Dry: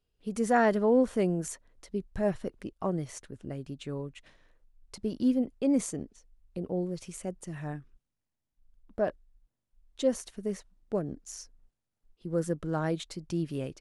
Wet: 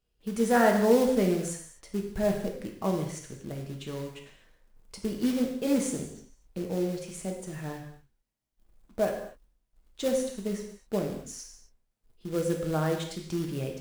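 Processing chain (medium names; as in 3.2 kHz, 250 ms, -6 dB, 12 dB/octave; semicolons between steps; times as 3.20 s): short-mantissa float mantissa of 2-bit; gated-style reverb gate 280 ms falling, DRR 1.5 dB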